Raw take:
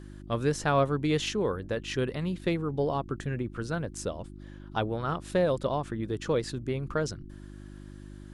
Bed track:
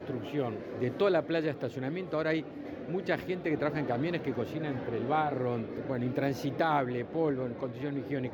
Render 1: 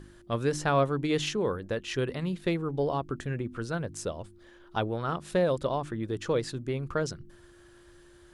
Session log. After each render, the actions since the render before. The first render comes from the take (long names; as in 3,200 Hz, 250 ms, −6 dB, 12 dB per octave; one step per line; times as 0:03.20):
hum removal 50 Hz, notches 6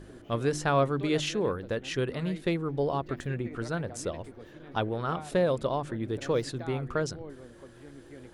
mix in bed track −14.5 dB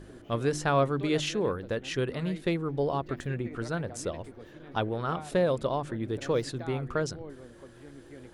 no processing that can be heard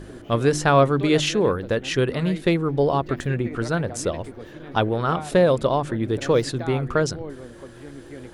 level +8.5 dB